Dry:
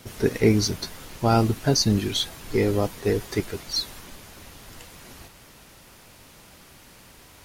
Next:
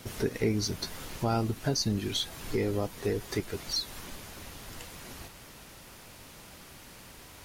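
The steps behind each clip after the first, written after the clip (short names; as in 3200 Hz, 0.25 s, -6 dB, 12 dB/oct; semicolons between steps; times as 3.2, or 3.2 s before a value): compressor 2:1, threshold -32 dBFS, peak gain reduction 10.5 dB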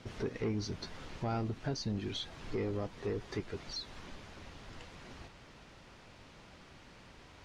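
soft clip -23.5 dBFS, distortion -16 dB; air absorption 130 m; gain -4 dB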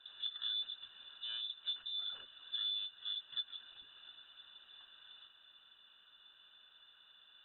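tracing distortion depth 0.24 ms; vowel filter u; inverted band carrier 3800 Hz; gain +5.5 dB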